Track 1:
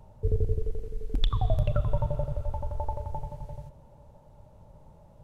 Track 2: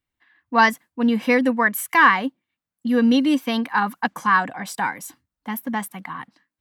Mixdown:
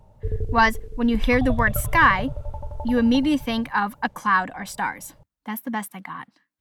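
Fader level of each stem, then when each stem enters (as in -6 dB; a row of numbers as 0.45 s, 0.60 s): -0.5 dB, -2.0 dB; 0.00 s, 0.00 s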